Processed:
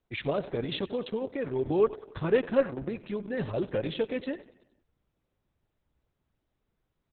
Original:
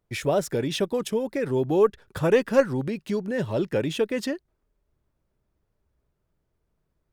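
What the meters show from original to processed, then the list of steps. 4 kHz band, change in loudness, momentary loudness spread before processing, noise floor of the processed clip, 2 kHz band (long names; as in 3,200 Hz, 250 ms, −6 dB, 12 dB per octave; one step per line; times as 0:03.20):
−5.0 dB, −5.5 dB, 8 LU, −81 dBFS, −6.0 dB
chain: repeating echo 92 ms, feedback 54%, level −16 dB
level −4.5 dB
Opus 6 kbit/s 48,000 Hz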